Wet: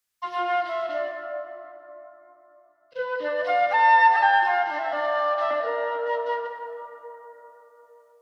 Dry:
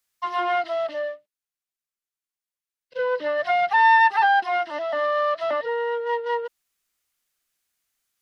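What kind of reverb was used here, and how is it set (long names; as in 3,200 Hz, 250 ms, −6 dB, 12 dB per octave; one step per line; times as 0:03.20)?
dense smooth reverb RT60 3.8 s, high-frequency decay 0.4×, DRR 2.5 dB
level −3.5 dB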